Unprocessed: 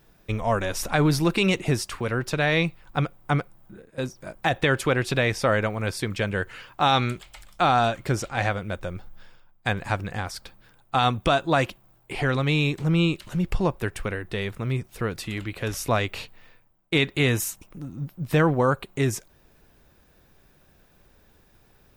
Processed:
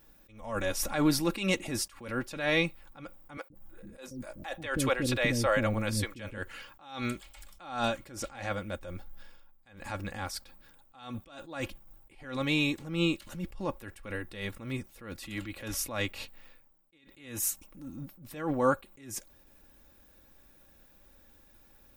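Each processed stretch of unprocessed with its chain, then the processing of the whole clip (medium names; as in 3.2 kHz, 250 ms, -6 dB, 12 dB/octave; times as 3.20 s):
3.37–6.38 s: bass shelf 190 Hz +6.5 dB + bands offset in time highs, lows 130 ms, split 400 Hz
11.60–12.24 s: de-esser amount 70% + bass shelf 93 Hz +11.5 dB
whole clip: treble shelf 7.9 kHz +7.5 dB; comb 3.6 ms, depth 57%; attacks held to a fixed rise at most 100 dB/s; trim -5 dB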